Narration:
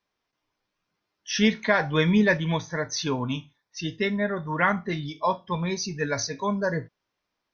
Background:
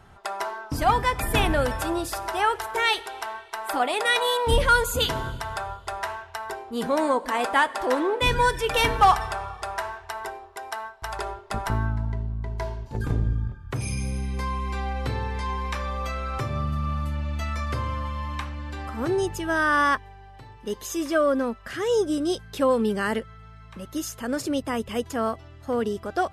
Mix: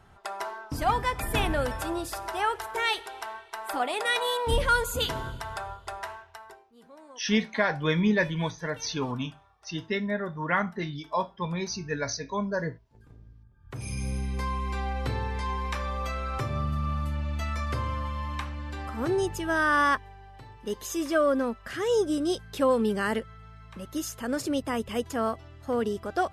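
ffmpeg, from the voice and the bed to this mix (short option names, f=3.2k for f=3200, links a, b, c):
-filter_complex "[0:a]adelay=5900,volume=-3.5dB[a];[1:a]volume=21dB,afade=t=out:st=5.84:d=0.88:silence=0.0707946,afade=t=in:st=13.51:d=0.6:silence=0.0530884[b];[a][b]amix=inputs=2:normalize=0"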